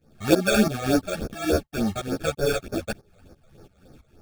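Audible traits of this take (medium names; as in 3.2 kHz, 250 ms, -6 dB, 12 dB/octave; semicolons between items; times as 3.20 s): aliases and images of a low sample rate 1 kHz, jitter 0%; phasing stages 12, 3.4 Hz, lowest notch 270–3100 Hz; tremolo saw up 3 Hz, depth 90%; a shimmering, thickened sound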